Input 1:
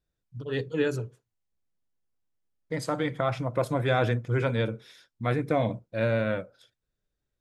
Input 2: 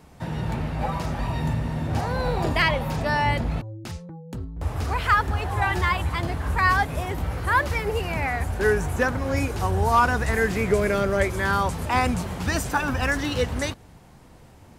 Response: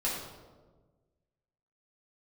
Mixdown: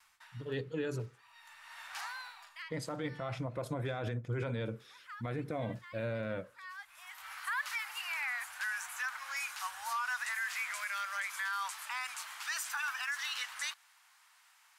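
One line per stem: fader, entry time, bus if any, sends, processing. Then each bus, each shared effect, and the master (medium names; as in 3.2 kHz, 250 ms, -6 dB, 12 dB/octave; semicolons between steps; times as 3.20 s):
-6.0 dB, 0.00 s, no send, peak limiter -19 dBFS, peak gain reduction 7.5 dB
-4.0 dB, 0.00 s, no send, inverse Chebyshev high-pass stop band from 450 Hz, stop band 50 dB; auto duck -23 dB, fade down 0.65 s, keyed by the first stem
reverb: none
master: gate with hold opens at -57 dBFS; peak limiter -27.5 dBFS, peak gain reduction 11 dB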